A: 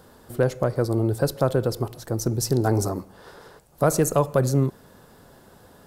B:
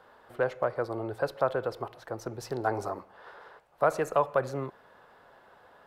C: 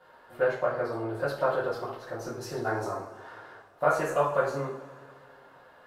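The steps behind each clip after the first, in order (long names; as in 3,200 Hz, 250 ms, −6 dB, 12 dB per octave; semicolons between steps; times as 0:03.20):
three-way crossover with the lows and the highs turned down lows −18 dB, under 530 Hz, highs −22 dB, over 3,100 Hz
coupled-rooms reverb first 0.45 s, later 2.3 s, from −18 dB, DRR −9.5 dB; level −7.5 dB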